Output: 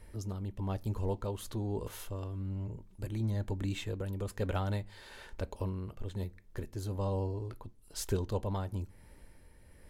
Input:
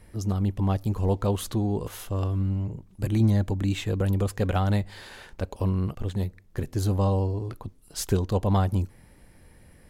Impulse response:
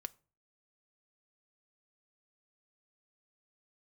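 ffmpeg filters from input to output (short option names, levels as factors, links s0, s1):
-filter_complex "[0:a]asplit=2[s0][s1];[s1]acompressor=threshold=0.0126:ratio=6,volume=0.891[s2];[s0][s2]amix=inputs=2:normalize=0,tremolo=f=1.1:d=0.4[s3];[1:a]atrim=start_sample=2205,asetrate=79380,aresample=44100[s4];[s3][s4]afir=irnorm=-1:irlink=0"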